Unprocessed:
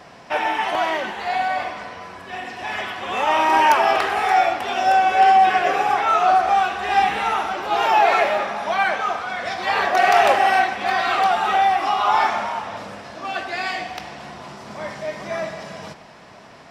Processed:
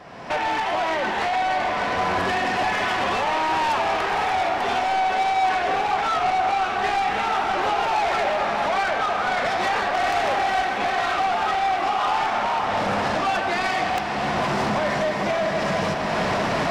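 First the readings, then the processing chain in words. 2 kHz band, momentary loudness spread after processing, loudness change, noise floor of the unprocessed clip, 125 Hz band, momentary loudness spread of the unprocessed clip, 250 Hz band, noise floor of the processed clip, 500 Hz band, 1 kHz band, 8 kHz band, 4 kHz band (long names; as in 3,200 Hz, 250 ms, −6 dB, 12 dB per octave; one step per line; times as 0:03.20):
−1.5 dB, 2 LU, −3.5 dB, −44 dBFS, can't be measured, 18 LU, +4.0 dB, −25 dBFS, −0.5 dB, −3.5 dB, 0.0 dB, −0.5 dB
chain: camcorder AGC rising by 34 dB per second
high-shelf EQ 4,300 Hz −10 dB
soft clipping −20 dBFS, distortion −9 dB
on a send: feedback delay with all-pass diffusion 547 ms, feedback 77%, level −10 dB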